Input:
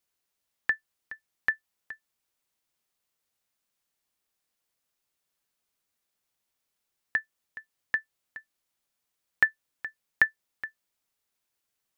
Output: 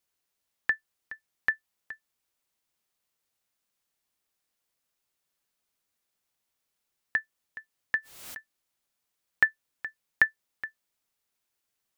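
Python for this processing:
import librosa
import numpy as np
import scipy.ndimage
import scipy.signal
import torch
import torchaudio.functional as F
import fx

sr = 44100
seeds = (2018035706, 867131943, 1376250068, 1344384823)

y = fx.pre_swell(x, sr, db_per_s=56.0, at=(7.97, 8.37))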